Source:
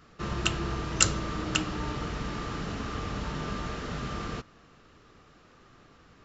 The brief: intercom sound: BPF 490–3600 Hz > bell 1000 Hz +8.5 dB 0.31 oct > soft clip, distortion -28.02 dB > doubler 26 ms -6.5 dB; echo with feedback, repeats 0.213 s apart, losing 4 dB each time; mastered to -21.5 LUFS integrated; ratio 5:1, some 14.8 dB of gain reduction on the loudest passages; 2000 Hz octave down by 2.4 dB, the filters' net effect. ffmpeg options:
-filter_complex "[0:a]equalizer=f=2k:t=o:g=-3,acompressor=threshold=-34dB:ratio=5,highpass=490,lowpass=3.6k,equalizer=f=1k:t=o:w=0.31:g=8.5,aecho=1:1:213|426|639|852|1065|1278|1491|1704|1917:0.631|0.398|0.25|0.158|0.0994|0.0626|0.0394|0.0249|0.0157,asoftclip=threshold=-24dB,asplit=2[a][b];[b]adelay=26,volume=-6.5dB[c];[a][c]amix=inputs=2:normalize=0,volume=18dB"

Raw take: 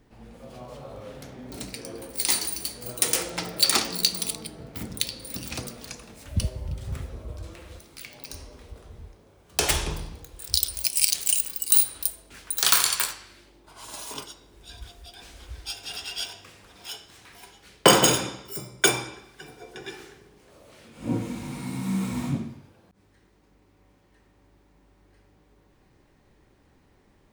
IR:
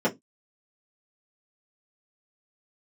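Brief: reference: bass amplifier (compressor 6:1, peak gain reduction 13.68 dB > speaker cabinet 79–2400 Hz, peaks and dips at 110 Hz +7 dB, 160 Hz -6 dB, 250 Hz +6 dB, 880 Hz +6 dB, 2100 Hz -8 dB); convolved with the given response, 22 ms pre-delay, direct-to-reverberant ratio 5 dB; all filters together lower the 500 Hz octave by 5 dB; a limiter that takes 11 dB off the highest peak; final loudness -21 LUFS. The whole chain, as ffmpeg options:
-filter_complex "[0:a]equalizer=f=500:t=o:g=-7,alimiter=limit=-13dB:level=0:latency=1,asplit=2[a][b];[1:a]atrim=start_sample=2205,adelay=22[c];[b][c]afir=irnorm=-1:irlink=0,volume=-18.5dB[d];[a][d]amix=inputs=2:normalize=0,acompressor=threshold=-31dB:ratio=6,highpass=f=79:w=0.5412,highpass=f=79:w=1.3066,equalizer=f=110:t=q:w=4:g=7,equalizer=f=160:t=q:w=4:g=-6,equalizer=f=250:t=q:w=4:g=6,equalizer=f=880:t=q:w=4:g=6,equalizer=f=2.1k:t=q:w=4:g=-8,lowpass=f=2.4k:w=0.5412,lowpass=f=2.4k:w=1.3066,volume=18dB"

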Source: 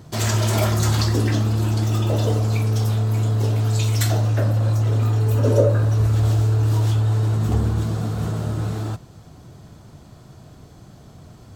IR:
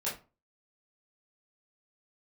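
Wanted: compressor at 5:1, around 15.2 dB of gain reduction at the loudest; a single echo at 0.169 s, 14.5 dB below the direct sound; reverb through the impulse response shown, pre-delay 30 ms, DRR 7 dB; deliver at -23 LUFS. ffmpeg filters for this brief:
-filter_complex "[0:a]acompressor=threshold=-29dB:ratio=5,aecho=1:1:169:0.188,asplit=2[a][b];[1:a]atrim=start_sample=2205,adelay=30[c];[b][c]afir=irnorm=-1:irlink=0,volume=-11.5dB[d];[a][d]amix=inputs=2:normalize=0,volume=10.5dB"

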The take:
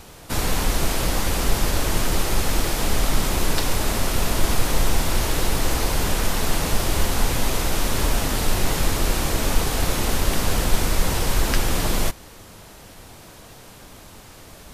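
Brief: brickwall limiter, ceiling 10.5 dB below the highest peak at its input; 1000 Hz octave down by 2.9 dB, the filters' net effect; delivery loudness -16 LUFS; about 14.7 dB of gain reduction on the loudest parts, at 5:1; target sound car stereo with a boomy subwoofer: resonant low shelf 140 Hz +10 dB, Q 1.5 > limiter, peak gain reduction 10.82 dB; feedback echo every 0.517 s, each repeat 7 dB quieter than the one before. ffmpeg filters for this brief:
-af "equalizer=f=1k:t=o:g=-3.5,acompressor=threshold=-29dB:ratio=5,alimiter=level_in=1dB:limit=-24dB:level=0:latency=1,volume=-1dB,lowshelf=f=140:t=q:w=1.5:g=10,aecho=1:1:517|1034|1551|2068|2585:0.447|0.201|0.0905|0.0407|0.0183,volume=20.5dB,alimiter=limit=-3.5dB:level=0:latency=1"

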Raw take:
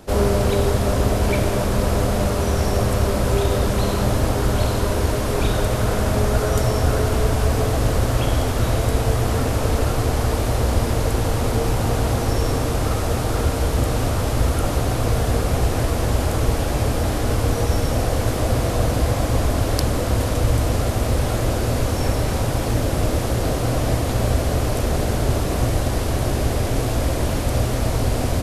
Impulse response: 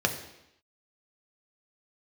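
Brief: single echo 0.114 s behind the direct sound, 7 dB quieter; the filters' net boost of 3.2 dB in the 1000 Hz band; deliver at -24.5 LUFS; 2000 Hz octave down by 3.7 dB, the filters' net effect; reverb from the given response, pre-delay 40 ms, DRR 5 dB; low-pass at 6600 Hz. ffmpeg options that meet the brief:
-filter_complex "[0:a]lowpass=6.6k,equalizer=f=1k:t=o:g=6,equalizer=f=2k:t=o:g=-7.5,aecho=1:1:114:0.447,asplit=2[a][b];[1:a]atrim=start_sample=2205,adelay=40[c];[b][c]afir=irnorm=-1:irlink=0,volume=-16dB[d];[a][d]amix=inputs=2:normalize=0,volume=-6dB"

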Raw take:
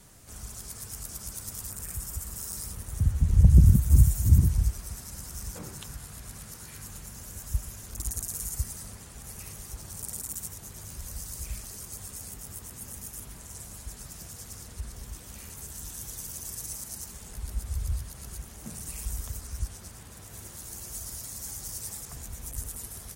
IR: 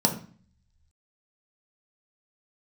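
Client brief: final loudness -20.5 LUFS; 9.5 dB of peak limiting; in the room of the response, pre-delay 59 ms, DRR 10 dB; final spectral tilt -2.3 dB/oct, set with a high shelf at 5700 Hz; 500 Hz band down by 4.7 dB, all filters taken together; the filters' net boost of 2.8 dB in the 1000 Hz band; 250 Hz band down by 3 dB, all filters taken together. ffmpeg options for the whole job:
-filter_complex "[0:a]equalizer=f=250:t=o:g=-5,equalizer=f=500:t=o:g=-6,equalizer=f=1k:t=o:g=5,highshelf=f=5.7k:g=8.5,alimiter=limit=-15dB:level=0:latency=1,asplit=2[a][b];[1:a]atrim=start_sample=2205,adelay=59[c];[b][c]afir=irnorm=-1:irlink=0,volume=-22.5dB[d];[a][d]amix=inputs=2:normalize=0,volume=10.5dB"

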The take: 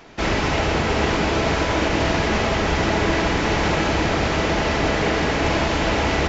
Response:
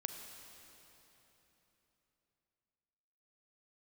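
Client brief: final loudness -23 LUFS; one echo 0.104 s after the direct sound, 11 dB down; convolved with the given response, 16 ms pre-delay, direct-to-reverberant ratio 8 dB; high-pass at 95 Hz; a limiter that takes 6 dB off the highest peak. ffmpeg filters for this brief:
-filter_complex "[0:a]highpass=95,alimiter=limit=-13.5dB:level=0:latency=1,aecho=1:1:104:0.282,asplit=2[a][b];[1:a]atrim=start_sample=2205,adelay=16[c];[b][c]afir=irnorm=-1:irlink=0,volume=-7dB[d];[a][d]amix=inputs=2:normalize=0,volume=-1dB"

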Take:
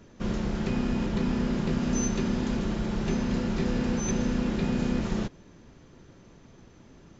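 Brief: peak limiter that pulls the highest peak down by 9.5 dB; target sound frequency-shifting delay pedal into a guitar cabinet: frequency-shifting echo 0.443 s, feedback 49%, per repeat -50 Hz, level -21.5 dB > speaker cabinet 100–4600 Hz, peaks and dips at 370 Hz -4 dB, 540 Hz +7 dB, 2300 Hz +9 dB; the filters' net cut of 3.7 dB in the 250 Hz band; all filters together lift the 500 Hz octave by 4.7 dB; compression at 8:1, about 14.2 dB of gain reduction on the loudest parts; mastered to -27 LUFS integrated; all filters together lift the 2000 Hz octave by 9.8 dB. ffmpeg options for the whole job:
-filter_complex "[0:a]equalizer=f=250:t=o:g=-5,equalizer=f=500:t=o:g=4.5,equalizer=f=2k:t=o:g=7,acompressor=threshold=-39dB:ratio=8,alimiter=level_in=14.5dB:limit=-24dB:level=0:latency=1,volume=-14.5dB,asplit=4[a][b][c][d];[b]adelay=443,afreqshift=-50,volume=-21.5dB[e];[c]adelay=886,afreqshift=-100,volume=-27.7dB[f];[d]adelay=1329,afreqshift=-150,volume=-33.9dB[g];[a][e][f][g]amix=inputs=4:normalize=0,highpass=100,equalizer=f=370:t=q:w=4:g=-4,equalizer=f=540:t=q:w=4:g=7,equalizer=f=2.3k:t=q:w=4:g=9,lowpass=f=4.6k:w=0.5412,lowpass=f=4.6k:w=1.3066,volume=20.5dB"

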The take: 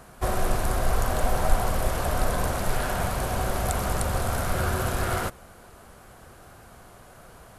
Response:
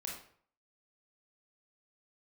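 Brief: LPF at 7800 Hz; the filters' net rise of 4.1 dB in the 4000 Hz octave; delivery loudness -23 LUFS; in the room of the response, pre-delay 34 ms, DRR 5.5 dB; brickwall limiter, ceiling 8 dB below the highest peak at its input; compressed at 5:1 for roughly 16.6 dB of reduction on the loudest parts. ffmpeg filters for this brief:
-filter_complex "[0:a]lowpass=7.8k,equalizer=f=4k:t=o:g=5.5,acompressor=threshold=-32dB:ratio=5,alimiter=level_in=4.5dB:limit=-24dB:level=0:latency=1,volume=-4.5dB,asplit=2[a][b];[1:a]atrim=start_sample=2205,adelay=34[c];[b][c]afir=irnorm=-1:irlink=0,volume=-5dB[d];[a][d]amix=inputs=2:normalize=0,volume=17dB"

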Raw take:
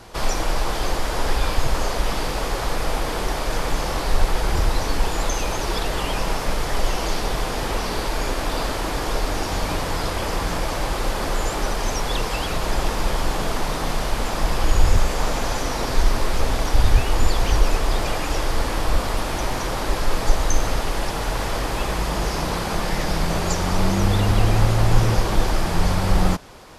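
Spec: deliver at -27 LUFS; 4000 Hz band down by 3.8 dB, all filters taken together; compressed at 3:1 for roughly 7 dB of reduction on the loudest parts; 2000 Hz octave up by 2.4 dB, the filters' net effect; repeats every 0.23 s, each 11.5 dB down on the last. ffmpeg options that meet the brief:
-af "equalizer=f=2k:t=o:g=4.5,equalizer=f=4k:t=o:g=-6.5,acompressor=threshold=-18dB:ratio=3,aecho=1:1:230|460|690:0.266|0.0718|0.0194,volume=-1.5dB"

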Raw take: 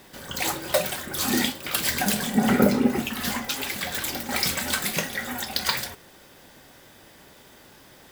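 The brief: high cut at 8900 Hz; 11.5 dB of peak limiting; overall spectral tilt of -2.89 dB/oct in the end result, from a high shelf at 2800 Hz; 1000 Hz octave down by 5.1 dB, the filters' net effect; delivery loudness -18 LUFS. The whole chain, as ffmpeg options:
-af "lowpass=8.9k,equalizer=f=1k:t=o:g=-8.5,highshelf=f=2.8k:g=7,volume=8.5dB,alimiter=limit=-7.5dB:level=0:latency=1"

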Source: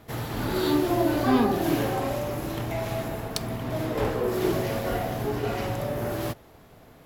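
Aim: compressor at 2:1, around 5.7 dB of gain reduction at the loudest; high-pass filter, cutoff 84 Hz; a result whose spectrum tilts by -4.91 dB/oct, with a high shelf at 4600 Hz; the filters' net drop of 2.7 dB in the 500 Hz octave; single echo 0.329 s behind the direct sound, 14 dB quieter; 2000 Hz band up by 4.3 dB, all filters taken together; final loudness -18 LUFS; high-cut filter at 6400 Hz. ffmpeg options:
-af "highpass=84,lowpass=6.4k,equalizer=f=500:t=o:g=-4,equalizer=f=2k:t=o:g=7,highshelf=f=4.6k:g=-7,acompressor=threshold=-28dB:ratio=2,aecho=1:1:329:0.2,volume=13dB"

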